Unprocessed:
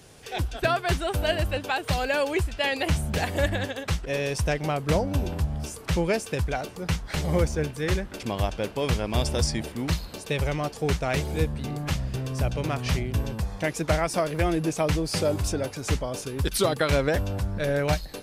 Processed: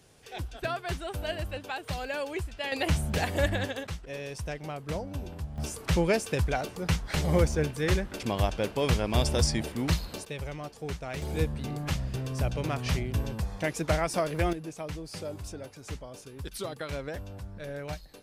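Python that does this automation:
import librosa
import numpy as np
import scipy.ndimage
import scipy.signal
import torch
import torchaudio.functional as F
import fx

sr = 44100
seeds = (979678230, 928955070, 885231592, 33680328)

y = fx.gain(x, sr, db=fx.steps((0.0, -8.5), (2.72, -2.0), (3.87, -10.5), (5.58, -0.5), (10.25, -10.5), (11.22, -3.0), (14.53, -13.0)))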